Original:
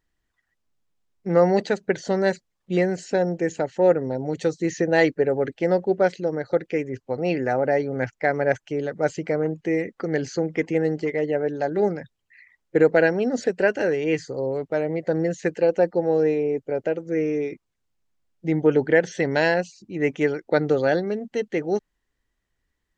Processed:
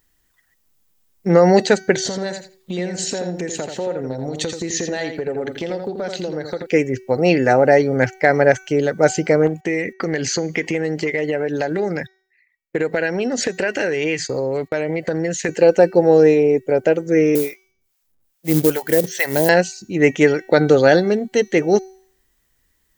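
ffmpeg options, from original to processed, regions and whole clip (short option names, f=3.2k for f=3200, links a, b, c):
-filter_complex "[0:a]asettb=1/sr,asplit=3[a][b][c];[a]atrim=end=1.974[d];[b]atrim=start=1.97:end=6.67,asetpts=PTS-STARTPTS,afade=t=in:d=0.004:c=qsin,afade=t=out:st=4.696:d=0.004:c=qsin,equalizer=f=3.7k:w=3.5:g=8,acompressor=threshold=-31dB:ratio=6:attack=3.2:release=140:knee=1:detection=peak,asplit=2[e][f];[f]adelay=84,lowpass=f=4.9k:p=1,volume=-6dB,asplit=2[g][h];[h]adelay=84,lowpass=f=4.9k:p=1,volume=0.18,asplit=2[i][j];[j]adelay=84,lowpass=f=4.9k:p=1,volume=0.18[k];[e][g][i][k]amix=inputs=4:normalize=0,atrim=end_sample=207270[l];[c]atrim=start=6.666[m];[d][l]acrossfade=d=0.004:c1=hsin:c2=qsin[n];[n][m]acrossfade=d=0.004:c1=qsin:c2=hsin,asettb=1/sr,asplit=3[o][p][q];[o]atrim=end=9.474[r];[p]atrim=start=9.47:end=15.49,asetpts=PTS-STARTPTS,afade=t=in:d=0.004:c=qsin,afade=t=out:st=6.016:d=0.004:c=qsin,agate=range=-25dB:threshold=-45dB:ratio=16:release=100:detection=peak,equalizer=f=2.3k:t=o:w=1.3:g=6.5,acompressor=threshold=-26dB:ratio=5:attack=3.2:release=140:knee=1:detection=peak[s];[q]atrim=start=15.486[t];[r][s]acrossfade=d=0.004:c1=hsin:c2=qsin[u];[u][t]acrossfade=d=0.004:c1=qsin:c2=hsin,asettb=1/sr,asplit=3[v][w][x];[v]atrim=end=17.354[y];[w]atrim=start=17.35:end=19.49,asetpts=PTS-STARTPTS,afade=t=in:d=0.004:c=qsin,afade=t=out:st=2.136:d=0.004:c=qsin,acrossover=split=670[z][aa];[z]aeval=exprs='val(0)*(1-1/2+1/2*cos(2*PI*2.4*n/s))':c=same[ab];[aa]aeval=exprs='val(0)*(1-1/2-1/2*cos(2*PI*2.4*n/s))':c=same[ac];[ab][ac]amix=inputs=2:normalize=0,acrusher=bits=5:mode=log:mix=0:aa=0.000001[ad];[x]atrim=start=19.486[ae];[y][ad]acrossfade=d=0.004:c1=hsin:c2=qsin[af];[af][ae]acrossfade=d=0.004:c1=qsin:c2=hsin,aemphasis=mode=production:type=50fm,bandreject=f=379.1:t=h:w=4,bandreject=f=758.2:t=h:w=4,bandreject=f=1.1373k:t=h:w=4,bandreject=f=1.5164k:t=h:w=4,bandreject=f=1.8955k:t=h:w=4,bandreject=f=2.2746k:t=h:w=4,bandreject=f=2.6537k:t=h:w=4,bandreject=f=3.0328k:t=h:w=4,bandreject=f=3.4119k:t=h:w=4,bandreject=f=3.791k:t=h:w=4,bandreject=f=4.1701k:t=h:w=4,bandreject=f=4.5492k:t=h:w=4,bandreject=f=4.9283k:t=h:w=4,bandreject=f=5.3074k:t=h:w=4,bandreject=f=5.6865k:t=h:w=4,bandreject=f=6.0656k:t=h:w=4,bandreject=f=6.4447k:t=h:w=4,bandreject=f=6.8238k:t=h:w=4,alimiter=level_in=10dB:limit=-1dB:release=50:level=0:latency=1,volume=-1dB"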